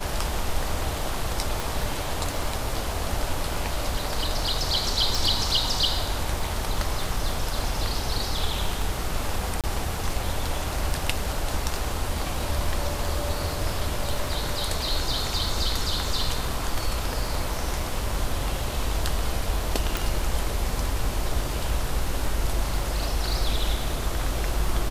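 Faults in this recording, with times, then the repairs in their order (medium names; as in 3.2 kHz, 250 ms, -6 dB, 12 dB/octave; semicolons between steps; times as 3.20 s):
crackle 29 per s -33 dBFS
1.60 s: pop
5.15 s: pop
9.61–9.64 s: dropout 27 ms
19.97 s: pop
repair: de-click; interpolate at 9.61 s, 27 ms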